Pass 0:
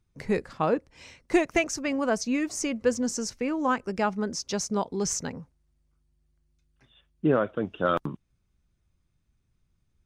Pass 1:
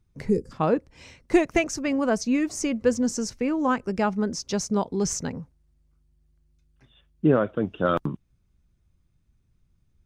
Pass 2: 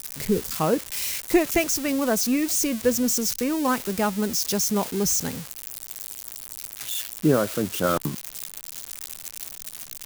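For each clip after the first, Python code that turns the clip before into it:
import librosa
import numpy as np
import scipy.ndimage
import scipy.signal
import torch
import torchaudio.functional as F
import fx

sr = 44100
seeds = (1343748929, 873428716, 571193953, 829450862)

y1 = fx.spec_box(x, sr, start_s=0.3, length_s=0.22, low_hz=530.0, high_hz=4600.0, gain_db=-20)
y1 = fx.low_shelf(y1, sr, hz=390.0, db=6.0)
y2 = y1 + 0.5 * 10.0 ** (-19.0 / 20.0) * np.diff(np.sign(y1), prepend=np.sign(y1[:1]))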